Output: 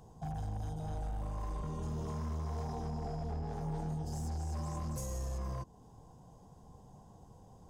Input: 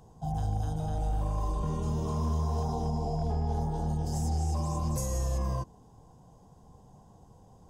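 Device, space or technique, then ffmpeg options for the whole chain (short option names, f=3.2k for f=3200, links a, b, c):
limiter into clipper: -filter_complex "[0:a]alimiter=level_in=5.5dB:limit=-24dB:level=0:latency=1:release=249,volume=-5.5dB,asoftclip=type=hard:threshold=-33dB,asettb=1/sr,asplit=3[a][b][c];[a]atrim=end=3.414[d];[b]atrim=start=3.41:end=4.03,asetpts=PTS-STARTPTS,afade=t=in:d=0.004:c=qsin,afade=t=out:st=0.616:d=0.004:c=qsin,asplit=2[e][f];[f]adelay=19,volume=-5dB[g];[e][g]amix=inputs=2:normalize=0,atrim=end_sample=27342[h];[c]atrim=start=4.026[i];[d][h]acrossfade=d=0.004:c1=hsin:c2=qsin[j];[j][i]acrossfade=d=0.004:c1=qsin:c2=hsin,volume=-1dB"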